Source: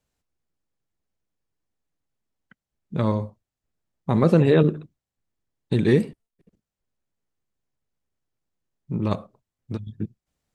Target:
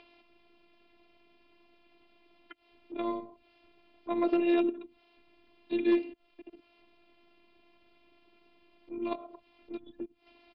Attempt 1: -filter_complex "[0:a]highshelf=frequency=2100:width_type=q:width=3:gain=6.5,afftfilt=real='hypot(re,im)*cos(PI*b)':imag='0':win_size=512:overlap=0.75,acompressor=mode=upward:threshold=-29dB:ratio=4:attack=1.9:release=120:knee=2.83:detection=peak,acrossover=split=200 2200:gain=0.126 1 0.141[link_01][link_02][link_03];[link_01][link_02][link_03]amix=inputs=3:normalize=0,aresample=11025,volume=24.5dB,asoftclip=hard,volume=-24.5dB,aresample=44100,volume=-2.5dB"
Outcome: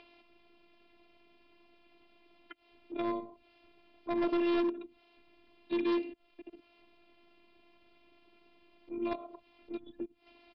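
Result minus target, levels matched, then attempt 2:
gain into a clipping stage and back: distortion +16 dB
-filter_complex "[0:a]highshelf=frequency=2100:width_type=q:width=3:gain=6.5,afftfilt=real='hypot(re,im)*cos(PI*b)':imag='0':win_size=512:overlap=0.75,acompressor=mode=upward:threshold=-29dB:ratio=4:attack=1.9:release=120:knee=2.83:detection=peak,acrossover=split=200 2200:gain=0.126 1 0.141[link_01][link_02][link_03];[link_01][link_02][link_03]amix=inputs=3:normalize=0,aresample=11025,volume=17dB,asoftclip=hard,volume=-17dB,aresample=44100,volume=-2.5dB"

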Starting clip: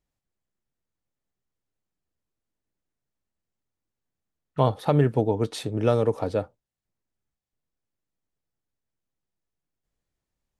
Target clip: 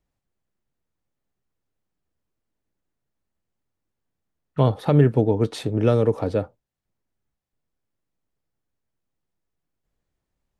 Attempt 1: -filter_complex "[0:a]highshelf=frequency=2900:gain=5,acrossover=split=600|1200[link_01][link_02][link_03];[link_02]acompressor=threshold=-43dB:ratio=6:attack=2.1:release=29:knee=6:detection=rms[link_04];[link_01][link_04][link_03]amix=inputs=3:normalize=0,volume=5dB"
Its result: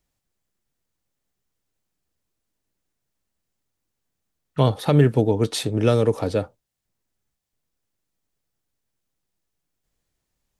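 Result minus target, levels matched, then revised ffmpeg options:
8,000 Hz band +10.5 dB
-filter_complex "[0:a]highshelf=frequency=2900:gain=-7,acrossover=split=600|1200[link_01][link_02][link_03];[link_02]acompressor=threshold=-43dB:ratio=6:attack=2.1:release=29:knee=6:detection=rms[link_04];[link_01][link_04][link_03]amix=inputs=3:normalize=0,volume=5dB"

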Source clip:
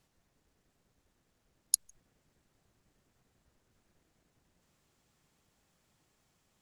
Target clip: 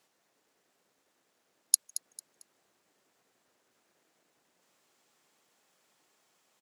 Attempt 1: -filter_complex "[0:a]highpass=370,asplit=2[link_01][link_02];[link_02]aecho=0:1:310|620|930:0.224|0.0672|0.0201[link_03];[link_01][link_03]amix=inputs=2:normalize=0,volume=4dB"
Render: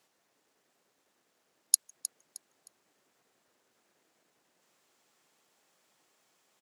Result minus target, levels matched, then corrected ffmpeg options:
echo 86 ms late
-filter_complex "[0:a]highpass=370,asplit=2[link_01][link_02];[link_02]aecho=0:1:224|448|672:0.224|0.0672|0.0201[link_03];[link_01][link_03]amix=inputs=2:normalize=0,volume=4dB"

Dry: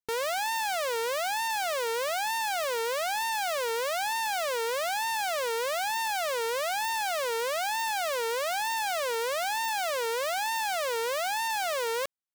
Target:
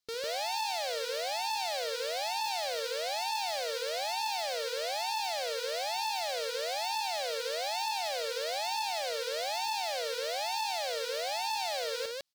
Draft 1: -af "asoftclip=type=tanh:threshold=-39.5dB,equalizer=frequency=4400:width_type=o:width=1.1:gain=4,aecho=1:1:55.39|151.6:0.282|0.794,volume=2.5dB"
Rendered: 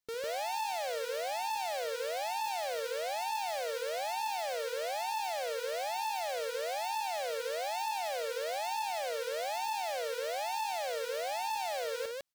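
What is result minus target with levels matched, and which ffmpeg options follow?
4,000 Hz band −5.0 dB
-af "asoftclip=type=tanh:threshold=-39.5dB,equalizer=frequency=4400:width_type=o:width=1.1:gain=13,aecho=1:1:55.39|151.6:0.282|0.794,volume=2.5dB"

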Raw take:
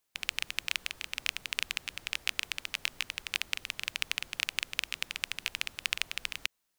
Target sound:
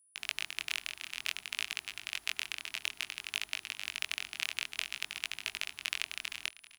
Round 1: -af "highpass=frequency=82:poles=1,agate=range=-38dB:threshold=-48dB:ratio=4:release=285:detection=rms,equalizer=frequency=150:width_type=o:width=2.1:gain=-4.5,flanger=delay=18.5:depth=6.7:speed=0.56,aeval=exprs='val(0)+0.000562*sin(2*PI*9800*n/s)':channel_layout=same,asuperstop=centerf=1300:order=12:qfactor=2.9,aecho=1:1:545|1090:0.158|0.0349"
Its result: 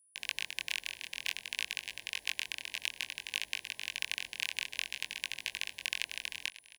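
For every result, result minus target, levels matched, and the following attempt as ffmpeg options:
echo 155 ms late; 1,000 Hz band −4.0 dB
-af "highpass=frequency=82:poles=1,agate=range=-38dB:threshold=-48dB:ratio=4:release=285:detection=rms,equalizer=frequency=150:width_type=o:width=2.1:gain=-4.5,flanger=delay=18.5:depth=6.7:speed=0.56,aeval=exprs='val(0)+0.000562*sin(2*PI*9800*n/s)':channel_layout=same,asuperstop=centerf=1300:order=12:qfactor=2.9,aecho=1:1:390|780:0.158|0.0349"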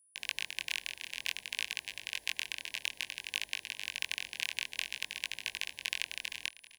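1,000 Hz band −4.0 dB
-af "highpass=frequency=82:poles=1,agate=range=-38dB:threshold=-48dB:ratio=4:release=285:detection=rms,equalizer=frequency=150:width_type=o:width=2.1:gain=-4.5,flanger=delay=18.5:depth=6.7:speed=0.56,aeval=exprs='val(0)+0.000562*sin(2*PI*9800*n/s)':channel_layout=same,asuperstop=centerf=520:order=12:qfactor=2.9,aecho=1:1:390|780:0.158|0.0349"

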